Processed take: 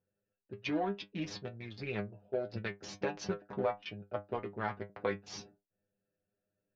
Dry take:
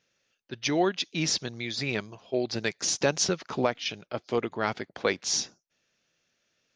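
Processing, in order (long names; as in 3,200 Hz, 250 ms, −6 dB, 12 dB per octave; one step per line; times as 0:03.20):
adaptive Wiener filter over 41 samples
low-pass filter 2,200 Hz 12 dB per octave
parametric band 280 Hz −7.5 dB 0.25 octaves
downward compressor, threshold −27 dBFS, peak gain reduction 7.5 dB
stiff-string resonator 99 Hz, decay 0.21 s, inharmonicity 0.002
level +6 dB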